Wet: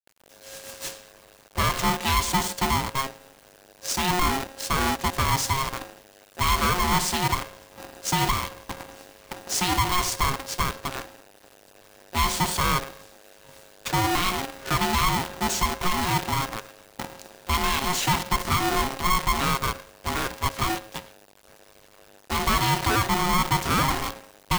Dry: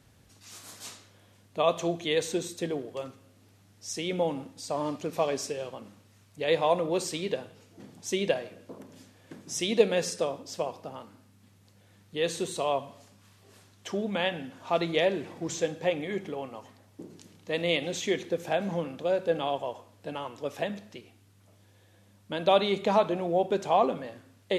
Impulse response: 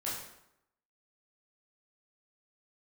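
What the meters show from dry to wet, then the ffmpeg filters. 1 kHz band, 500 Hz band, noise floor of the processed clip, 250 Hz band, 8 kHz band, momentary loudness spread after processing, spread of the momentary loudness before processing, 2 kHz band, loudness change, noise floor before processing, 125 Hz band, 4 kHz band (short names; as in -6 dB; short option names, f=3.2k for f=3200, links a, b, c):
+9.0 dB, -7.0 dB, -55 dBFS, +3.5 dB, +11.0 dB, 16 LU, 19 LU, +9.5 dB, +5.0 dB, -60 dBFS, +11.5 dB, +8.0 dB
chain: -af "bandreject=f=263.4:t=h:w=4,bandreject=f=526.8:t=h:w=4,bandreject=f=790.2:t=h:w=4,bandreject=f=1.0536k:t=h:w=4,bandreject=f=1.317k:t=h:w=4,bandreject=f=1.5804k:t=h:w=4,bandreject=f=1.8438k:t=h:w=4,bandreject=f=2.1072k:t=h:w=4,bandreject=f=2.3706k:t=h:w=4,bandreject=f=2.634k:t=h:w=4,bandreject=f=2.8974k:t=h:w=4,bandreject=f=3.1608k:t=h:w=4,bandreject=f=3.4242k:t=h:w=4,bandreject=f=3.6876k:t=h:w=4,bandreject=f=3.951k:t=h:w=4,bandreject=f=4.2144k:t=h:w=4,bandreject=f=4.4778k:t=h:w=4,bandreject=f=4.7412k:t=h:w=4,bandreject=f=5.0046k:t=h:w=4,bandreject=f=5.268k:t=h:w=4,bandreject=f=5.5314k:t=h:w=4,bandreject=f=5.7948k:t=h:w=4,bandreject=f=6.0582k:t=h:w=4,bandreject=f=6.3216k:t=h:w=4,bandreject=f=6.585k:t=h:w=4,bandreject=f=6.8484k:t=h:w=4,bandreject=f=7.1118k:t=h:w=4,bandreject=f=7.3752k:t=h:w=4,bandreject=f=7.6386k:t=h:w=4,bandreject=f=7.902k:t=h:w=4,bandreject=f=8.1654k:t=h:w=4,bandreject=f=8.4288k:t=h:w=4,bandreject=f=8.6922k:t=h:w=4,bandreject=f=8.9556k:t=h:w=4,agate=range=-33dB:threshold=-57dB:ratio=3:detection=peak,equalizer=f=430:t=o:w=0.24:g=3.5,dynaudnorm=f=180:g=3:m=6.5dB,alimiter=limit=-12dB:level=0:latency=1:release=131,acrusher=bits=6:dc=4:mix=0:aa=0.000001,asoftclip=type=tanh:threshold=-19.5dB,aeval=exprs='val(0)*sgn(sin(2*PI*540*n/s))':c=same,volume=3dB"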